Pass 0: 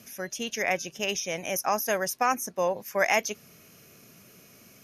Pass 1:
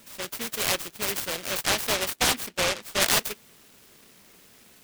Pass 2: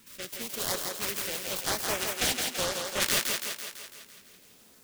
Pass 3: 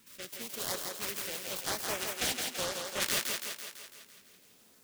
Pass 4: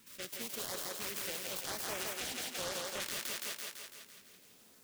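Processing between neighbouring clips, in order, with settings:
parametric band 130 Hz −11.5 dB 1.3 octaves; short delay modulated by noise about 2,200 Hz, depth 0.32 ms; level +1.5 dB
auto-filter notch saw up 1 Hz 610–4,700 Hz; on a send: feedback echo with a high-pass in the loop 167 ms, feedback 59%, high-pass 210 Hz, level −4 dB; on the sum: level −4.5 dB
low-shelf EQ 67 Hz −6 dB; level −4.5 dB
brickwall limiter −28.5 dBFS, peak gain reduction 11 dB

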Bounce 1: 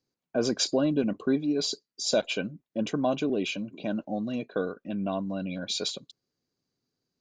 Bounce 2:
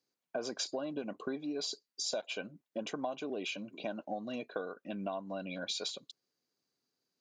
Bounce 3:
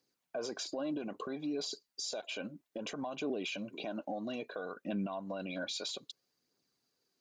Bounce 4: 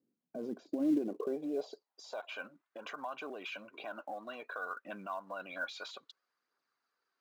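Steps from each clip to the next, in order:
high-pass filter 490 Hz 6 dB per octave; dynamic equaliser 820 Hz, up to +6 dB, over −44 dBFS, Q 1.2; downward compressor 5 to 1, threshold −35 dBFS, peak gain reduction 14.5 dB
brickwall limiter −34.5 dBFS, peak gain reduction 10.5 dB; phase shifter 0.61 Hz, delay 3.8 ms, feedback 32%; level +4 dB
pitch vibrato 8.1 Hz 28 cents; band-pass filter sweep 230 Hz → 1,300 Hz, 0:00.63–0:02.38; in parallel at −11 dB: floating-point word with a short mantissa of 2 bits; on the sum: level +6.5 dB

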